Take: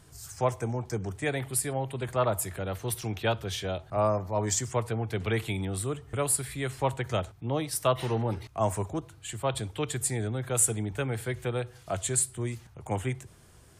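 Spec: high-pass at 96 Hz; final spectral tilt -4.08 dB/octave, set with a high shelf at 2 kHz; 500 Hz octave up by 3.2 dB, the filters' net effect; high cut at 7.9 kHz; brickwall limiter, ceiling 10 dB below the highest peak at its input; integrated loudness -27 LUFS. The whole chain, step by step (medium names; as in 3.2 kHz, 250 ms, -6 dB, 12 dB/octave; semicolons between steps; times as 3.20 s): high-pass 96 Hz; low-pass 7.9 kHz; peaking EQ 500 Hz +3.5 dB; treble shelf 2 kHz +5.5 dB; trim +4 dB; peak limiter -15 dBFS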